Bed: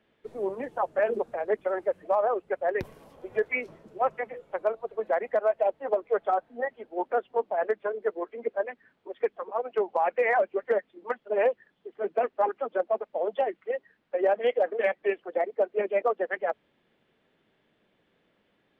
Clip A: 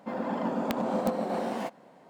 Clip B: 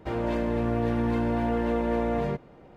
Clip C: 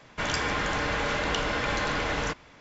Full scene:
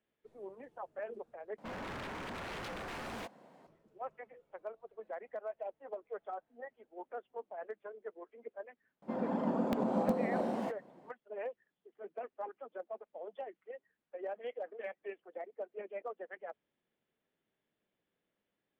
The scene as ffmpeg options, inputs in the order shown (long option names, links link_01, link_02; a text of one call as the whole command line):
ffmpeg -i bed.wav -i cue0.wav -filter_complex "[1:a]asplit=2[link_01][link_02];[0:a]volume=-17dB[link_03];[link_01]aeval=exprs='0.0224*(abs(mod(val(0)/0.0224+3,4)-2)-1)':channel_layout=same[link_04];[link_02]tiltshelf=frequency=940:gain=4.5[link_05];[link_03]asplit=2[link_06][link_07];[link_06]atrim=end=1.584[link_08];[link_04]atrim=end=2.09,asetpts=PTS-STARTPTS,volume=-5dB[link_09];[link_07]atrim=start=3.666[link_10];[link_05]atrim=end=2.09,asetpts=PTS-STARTPTS,volume=-6dB,afade=type=in:duration=0.004:curve=hsin,afade=type=out:start_time=2.086:duration=0.004:curve=hsin,adelay=9020[link_11];[link_08][link_09]acrossfade=duration=0.004:curve1=hsin:curve2=hsin[link_12];[link_12][link_10]acrossfade=duration=0.004:curve1=hsin:curve2=hsin[link_13];[link_13][link_11]amix=inputs=2:normalize=0" out.wav